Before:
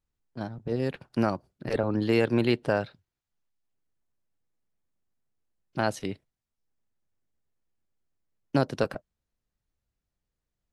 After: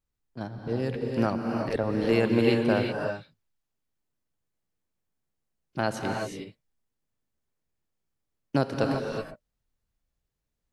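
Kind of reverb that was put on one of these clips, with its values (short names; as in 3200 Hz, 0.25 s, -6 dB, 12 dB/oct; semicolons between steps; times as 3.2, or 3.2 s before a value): non-linear reverb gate 0.4 s rising, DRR 1.5 dB; gain -1 dB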